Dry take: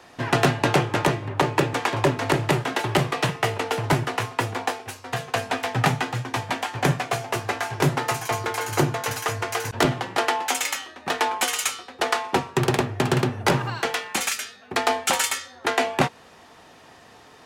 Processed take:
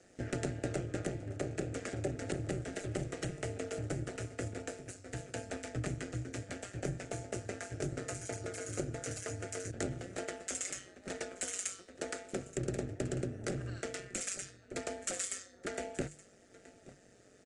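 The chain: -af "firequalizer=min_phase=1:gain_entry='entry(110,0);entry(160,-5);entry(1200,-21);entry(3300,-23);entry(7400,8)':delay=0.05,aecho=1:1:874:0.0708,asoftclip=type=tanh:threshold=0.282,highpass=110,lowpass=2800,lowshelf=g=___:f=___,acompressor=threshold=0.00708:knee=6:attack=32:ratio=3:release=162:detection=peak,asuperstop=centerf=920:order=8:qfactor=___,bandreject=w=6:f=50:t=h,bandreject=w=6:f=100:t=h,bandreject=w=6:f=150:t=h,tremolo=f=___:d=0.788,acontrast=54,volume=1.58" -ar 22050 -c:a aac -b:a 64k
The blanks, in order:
-11, 480, 1.5, 190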